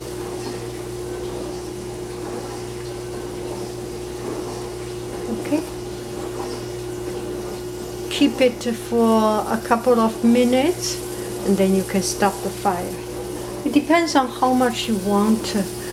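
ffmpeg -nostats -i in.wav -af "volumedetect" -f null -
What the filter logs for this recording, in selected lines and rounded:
mean_volume: -21.9 dB
max_volume: -2.6 dB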